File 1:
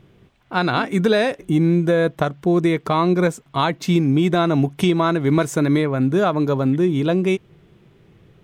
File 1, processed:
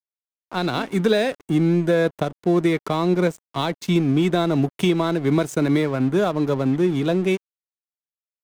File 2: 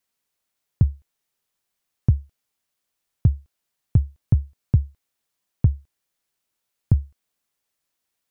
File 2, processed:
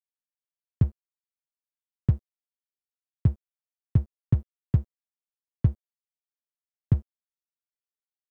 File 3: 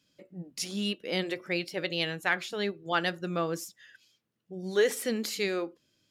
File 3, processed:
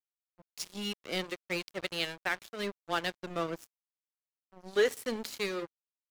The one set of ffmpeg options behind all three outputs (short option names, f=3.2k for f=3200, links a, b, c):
-filter_complex "[0:a]lowshelf=f=89:g=-8,acrossover=split=280|730|2400[a][b][c][d];[c]alimiter=limit=-21.5dB:level=0:latency=1:release=309[e];[a][b][e][d]amix=inputs=4:normalize=0,aeval=exprs='sgn(val(0))*max(abs(val(0))-0.0158,0)':c=same"